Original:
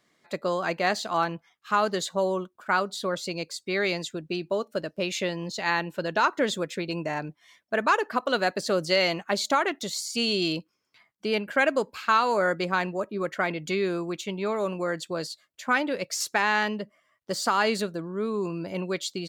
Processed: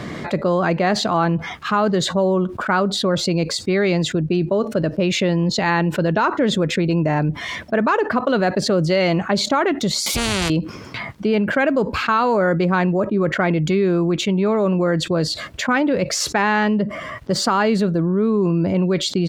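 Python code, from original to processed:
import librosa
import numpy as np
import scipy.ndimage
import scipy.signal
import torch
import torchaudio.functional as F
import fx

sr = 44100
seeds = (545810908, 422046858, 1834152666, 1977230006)

y = fx.spectral_comp(x, sr, ratio=10.0, at=(10.06, 10.5))
y = scipy.signal.sosfilt(scipy.signal.butter(2, 54.0, 'highpass', fs=sr, output='sos'), y)
y = fx.riaa(y, sr, side='playback')
y = fx.env_flatten(y, sr, amount_pct=70)
y = y * librosa.db_to_amplitude(2.0)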